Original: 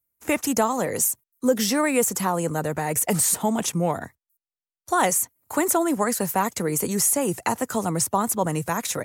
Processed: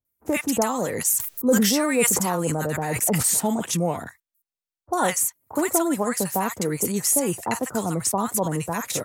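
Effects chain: bands offset in time lows, highs 50 ms, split 1.1 kHz; 0.89–3.28 s: decay stretcher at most 24 dB/s

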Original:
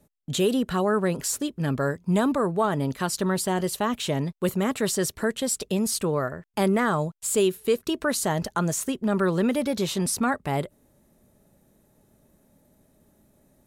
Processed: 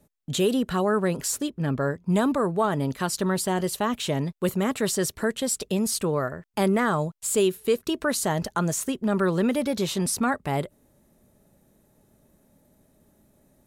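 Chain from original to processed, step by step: 1.50–2.10 s: treble shelf 3.6 kHz -8.5 dB

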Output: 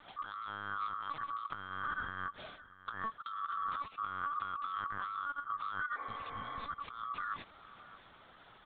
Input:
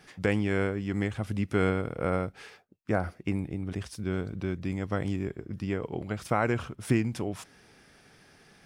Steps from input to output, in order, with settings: split-band scrambler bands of 1 kHz; LPC vocoder at 8 kHz pitch kept; bass shelf 99 Hz -9 dB; compressor with a negative ratio -35 dBFS, ratio -1; spectral replace 5.99–6.60 s, 270–2400 Hz after; on a send: delay 615 ms -17.5 dB; on the sum: trim -5 dB

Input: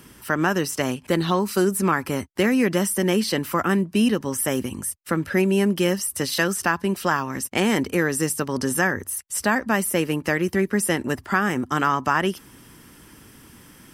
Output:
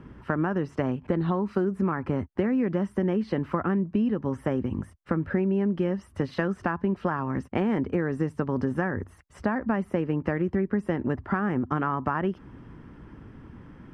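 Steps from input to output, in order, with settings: low-pass 1.4 kHz 12 dB/octave; bass shelf 180 Hz +8 dB; compression, threshold -22 dBFS, peak gain reduction 9 dB

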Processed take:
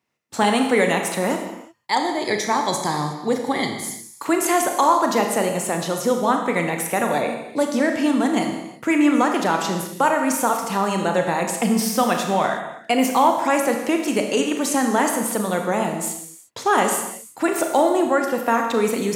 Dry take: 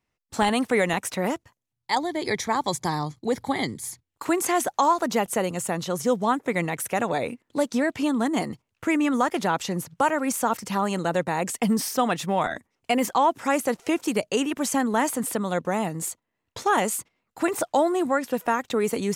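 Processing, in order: high-pass 150 Hz 12 dB/octave; reverberation, pre-delay 27 ms, DRR 3.5 dB; trim +3 dB

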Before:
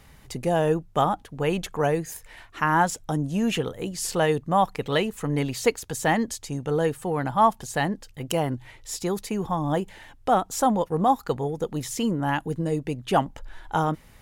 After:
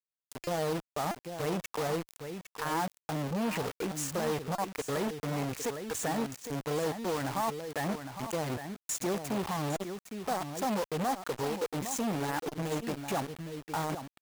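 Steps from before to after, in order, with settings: gate -39 dBFS, range -16 dB; spectral noise reduction 21 dB; high-pass 99 Hz 12 dB/octave; low-pass that closes with the level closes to 1.5 kHz, closed at -19 dBFS; high-order bell 3.9 kHz -14 dB 1 oct; gain riding within 4 dB 2 s; peak limiter -22 dBFS, peak gain reduction 14.5 dB; word length cut 6-bit, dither none; delay 809 ms -10.5 dB; buffer glitch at 0.44/1.11/4.55/9.76/12.48 s, samples 128, times 10; transformer saturation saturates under 720 Hz

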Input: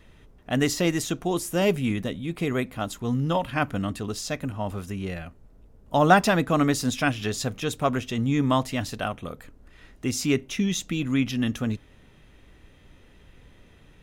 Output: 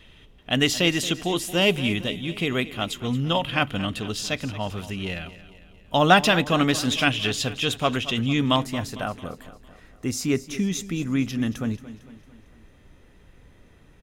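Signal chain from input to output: peaking EQ 3.1 kHz +12.5 dB 0.84 oct, from 8.56 s -4.5 dB; feedback delay 226 ms, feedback 52%, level -15.5 dB

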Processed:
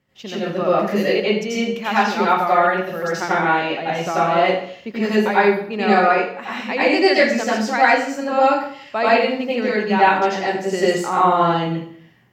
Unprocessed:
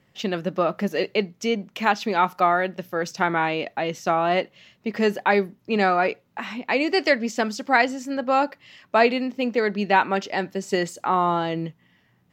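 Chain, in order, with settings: level rider gain up to 6.5 dB; plate-style reverb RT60 0.59 s, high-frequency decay 0.85×, pre-delay 75 ms, DRR -8.5 dB; trim -8 dB

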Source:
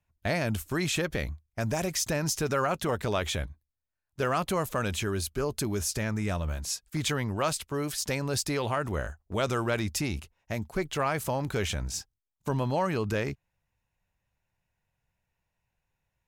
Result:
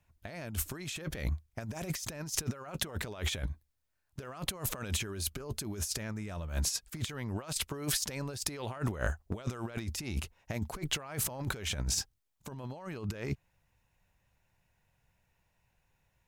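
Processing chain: compressor with a negative ratio -35 dBFS, ratio -0.5

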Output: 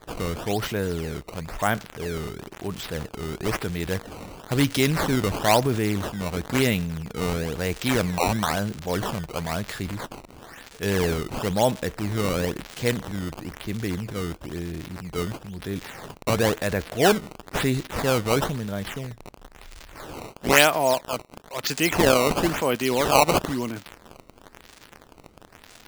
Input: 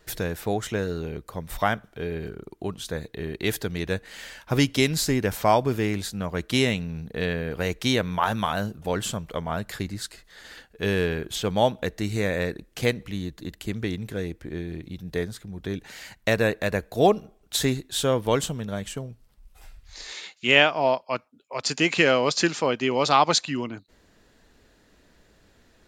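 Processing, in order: crackle 470 per s -33 dBFS; transient shaper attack -3 dB, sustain +5 dB; decimation with a swept rate 15×, swing 160% 1 Hz; trim +1 dB

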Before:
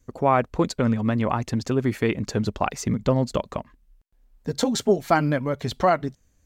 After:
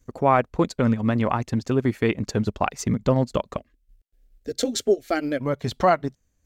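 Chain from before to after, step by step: 3.57–5.40 s: static phaser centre 400 Hz, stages 4; transient shaper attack -1 dB, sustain -8 dB; trim +1.5 dB

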